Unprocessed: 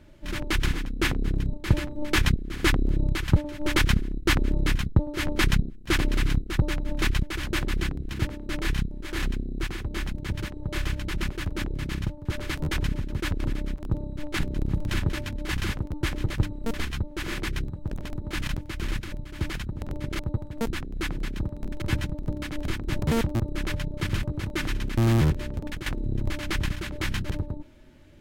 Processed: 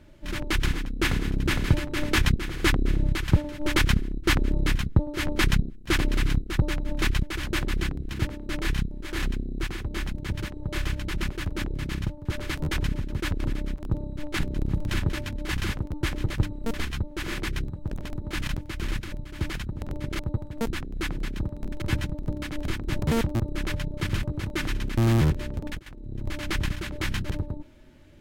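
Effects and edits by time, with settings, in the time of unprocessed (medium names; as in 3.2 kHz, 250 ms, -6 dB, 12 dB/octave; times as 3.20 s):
0.65–1.28 s: echo throw 460 ms, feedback 60%, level -1.5 dB
25.79–26.41 s: fade in quadratic, from -15.5 dB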